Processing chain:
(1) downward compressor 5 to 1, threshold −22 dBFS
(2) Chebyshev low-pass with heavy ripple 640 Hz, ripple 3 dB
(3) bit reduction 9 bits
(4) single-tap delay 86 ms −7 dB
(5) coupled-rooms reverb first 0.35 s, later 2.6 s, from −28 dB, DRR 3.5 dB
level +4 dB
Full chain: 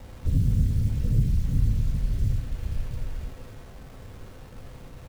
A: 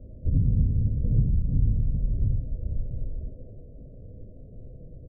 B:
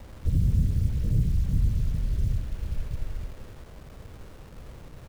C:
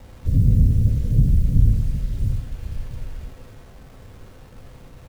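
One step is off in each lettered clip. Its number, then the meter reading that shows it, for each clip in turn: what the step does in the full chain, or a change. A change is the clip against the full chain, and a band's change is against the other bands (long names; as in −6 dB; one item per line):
3, distortion level −28 dB
5, echo-to-direct ratio −1.5 dB to −7.0 dB
1, average gain reduction 2.5 dB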